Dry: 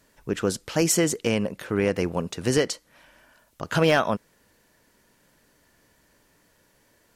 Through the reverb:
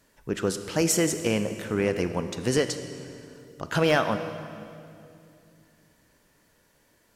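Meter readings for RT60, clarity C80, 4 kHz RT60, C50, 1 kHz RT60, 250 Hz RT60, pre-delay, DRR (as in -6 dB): 2.6 s, 10.5 dB, 2.1 s, 9.5 dB, 2.4 s, 3.3 s, 28 ms, 9.0 dB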